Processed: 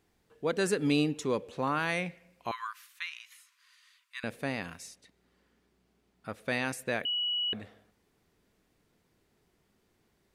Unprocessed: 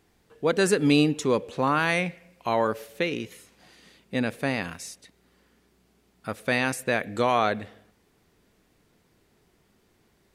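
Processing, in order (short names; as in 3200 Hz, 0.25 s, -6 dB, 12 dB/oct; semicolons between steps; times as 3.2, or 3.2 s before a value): 2.51–4.24 brick-wall FIR high-pass 950 Hz; 4.86–6.47 high shelf 9400 Hz -> 5500 Hz -6.5 dB; 7.05–7.53 bleep 2930 Hz -21 dBFS; gain -7 dB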